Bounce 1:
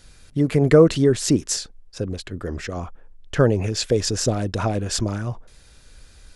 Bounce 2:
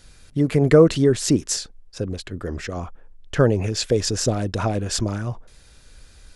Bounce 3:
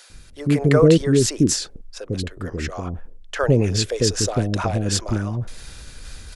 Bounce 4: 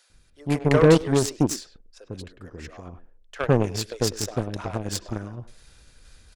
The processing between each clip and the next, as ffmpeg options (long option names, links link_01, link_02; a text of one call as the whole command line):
ffmpeg -i in.wav -af anull out.wav
ffmpeg -i in.wav -filter_complex "[0:a]areverse,acompressor=mode=upward:threshold=-28dB:ratio=2.5,areverse,acrossover=split=510[link_01][link_02];[link_01]adelay=100[link_03];[link_03][link_02]amix=inputs=2:normalize=0,volume=2dB" out.wav
ffmpeg -i in.wav -filter_complex "[0:a]asplit=2[link_01][link_02];[link_02]adelay=100,highpass=300,lowpass=3400,asoftclip=type=hard:threshold=-11dB,volume=-8dB[link_03];[link_01][link_03]amix=inputs=2:normalize=0,aeval=exprs='0.891*(cos(1*acos(clip(val(0)/0.891,-1,1)))-cos(1*PI/2))+0.0282*(cos(5*acos(clip(val(0)/0.891,-1,1)))-cos(5*PI/2))+0.112*(cos(7*acos(clip(val(0)/0.891,-1,1)))-cos(7*PI/2))':channel_layout=same,volume=-3dB" out.wav